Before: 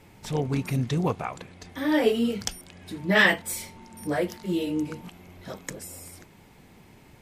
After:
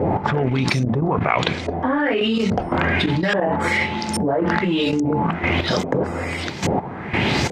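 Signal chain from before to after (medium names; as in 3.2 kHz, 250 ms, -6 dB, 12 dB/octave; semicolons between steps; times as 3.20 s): high-pass 92 Hz; hum notches 60/120/180/240/300 Hz; trance gate "x..xx.x......" 92 bpm -12 dB; tape speed -4%; in parallel at -7.5 dB: crossover distortion -40.5 dBFS; on the sum: LFO low-pass saw up 1.2 Hz 530–6800 Hz; level flattener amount 100%; trim -5.5 dB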